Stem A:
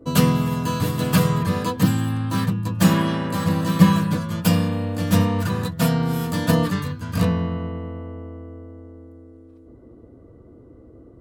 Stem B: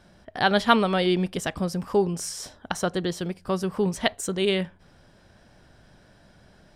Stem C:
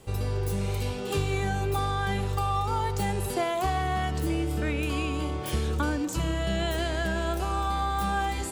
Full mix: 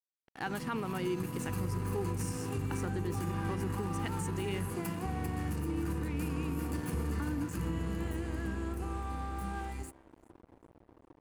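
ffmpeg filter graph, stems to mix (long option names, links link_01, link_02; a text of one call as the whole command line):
ffmpeg -i stem1.wav -i stem2.wav -i stem3.wav -filter_complex "[0:a]acompressor=threshold=-27dB:ratio=4,asoftclip=type=tanh:threshold=-26.5dB,adelay=400,volume=-6dB,asplit=2[link_01][link_02];[link_02]volume=-6dB[link_03];[1:a]volume=-10dB[link_04];[2:a]highpass=frequency=68:poles=1,equalizer=frequency=88:width=0.43:gain=10.5,adelay=1400,volume=-12.5dB,asplit=2[link_05][link_06];[link_06]volume=-21.5dB[link_07];[link_03][link_07]amix=inputs=2:normalize=0,aecho=0:1:395|790|1185|1580|1975|2370:1|0.44|0.194|0.0852|0.0375|0.0165[link_08];[link_01][link_04][link_05][link_08]amix=inputs=4:normalize=0,superequalizer=6b=1.78:8b=0.355:13b=0.282:14b=0.631:16b=1.58,aeval=exprs='sgn(val(0))*max(abs(val(0))-0.00447,0)':channel_layout=same,alimiter=level_in=1.5dB:limit=-24dB:level=0:latency=1:release=62,volume=-1.5dB" out.wav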